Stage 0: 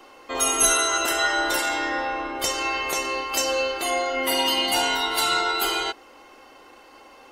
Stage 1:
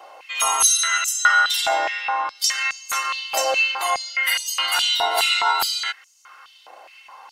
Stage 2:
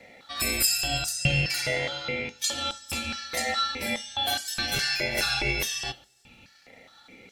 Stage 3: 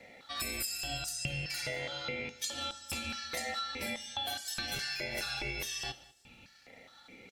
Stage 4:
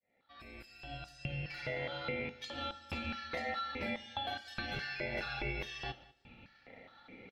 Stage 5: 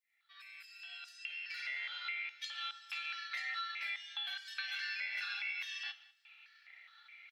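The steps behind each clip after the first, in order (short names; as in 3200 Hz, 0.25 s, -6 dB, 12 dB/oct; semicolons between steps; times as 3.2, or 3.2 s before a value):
stepped high-pass 4.8 Hz 670–6600 Hz
ring modulator 1300 Hz; two-slope reverb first 0.25 s, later 1.6 s, from -27 dB, DRR 12 dB; gain -4.5 dB
compressor, threshold -30 dBFS, peak gain reduction 11.5 dB; echo 0.196 s -21.5 dB; gain -3.5 dB
opening faded in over 1.93 s; air absorption 340 m; gain +2.5 dB
HPF 1500 Hz 24 dB/oct; gain +2.5 dB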